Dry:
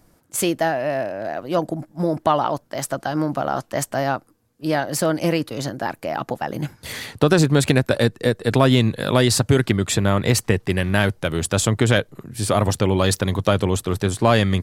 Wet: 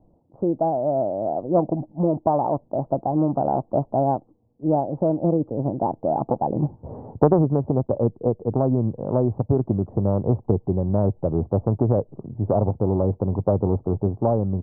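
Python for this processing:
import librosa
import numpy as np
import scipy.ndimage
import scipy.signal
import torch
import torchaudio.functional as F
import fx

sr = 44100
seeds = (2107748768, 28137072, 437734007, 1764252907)

y = scipy.signal.sosfilt(scipy.signal.butter(8, 890.0, 'lowpass', fs=sr, output='sos'), x)
y = fx.rider(y, sr, range_db=5, speed_s=0.5)
y = fx.doppler_dist(y, sr, depth_ms=0.33)
y = y * 10.0 ** (-1.0 / 20.0)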